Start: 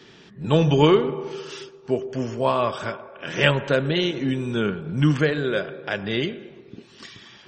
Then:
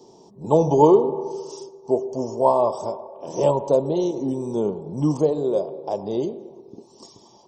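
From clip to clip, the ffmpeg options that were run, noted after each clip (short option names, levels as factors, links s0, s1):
-af "firequalizer=gain_entry='entry(120,0);entry(360,9);entry(940,14);entry(1500,-28);entry(5500,9)':delay=0.05:min_phase=1,volume=0.473"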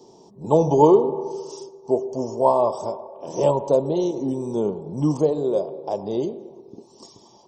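-af anull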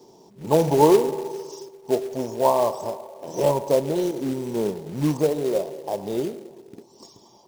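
-af "acrusher=bits=4:mode=log:mix=0:aa=0.000001,volume=0.841"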